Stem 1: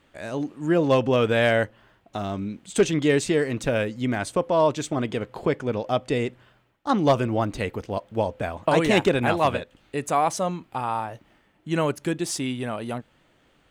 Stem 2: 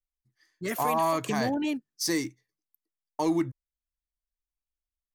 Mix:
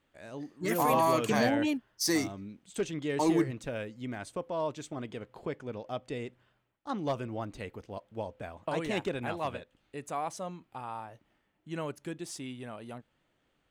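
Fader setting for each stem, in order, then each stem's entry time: -13.0, -0.5 dB; 0.00, 0.00 s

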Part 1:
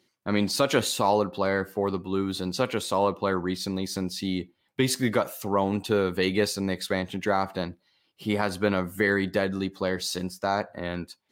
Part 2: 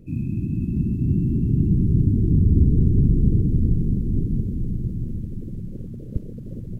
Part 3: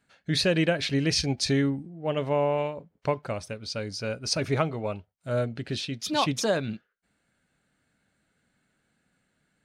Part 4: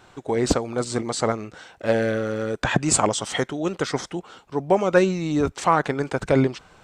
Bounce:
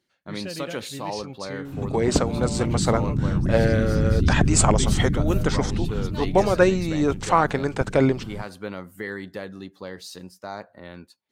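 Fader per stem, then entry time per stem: -9.0, -4.0, -12.0, 0.0 dB; 0.00, 1.65, 0.00, 1.65 s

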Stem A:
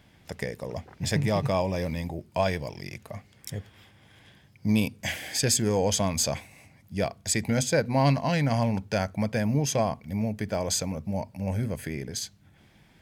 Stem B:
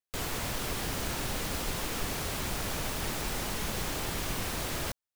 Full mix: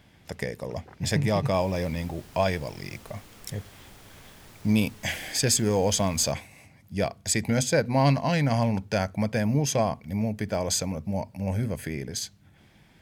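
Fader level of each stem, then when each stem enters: +1.0, -17.0 dB; 0.00, 1.40 s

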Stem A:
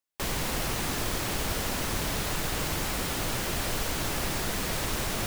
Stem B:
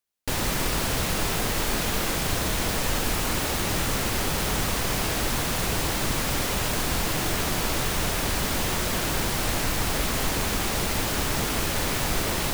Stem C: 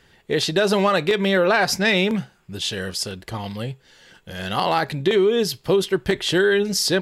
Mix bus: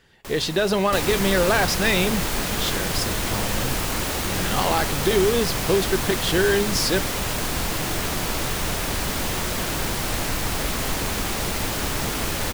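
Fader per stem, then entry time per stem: -6.0, +0.5, -2.5 dB; 0.05, 0.65, 0.00 s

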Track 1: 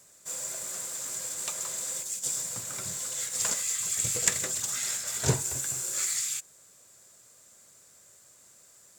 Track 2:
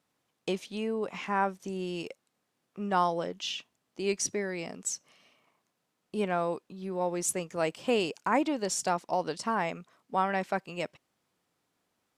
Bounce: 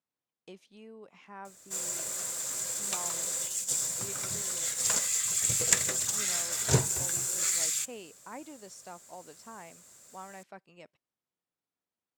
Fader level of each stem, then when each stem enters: +1.0, -17.5 dB; 1.45, 0.00 s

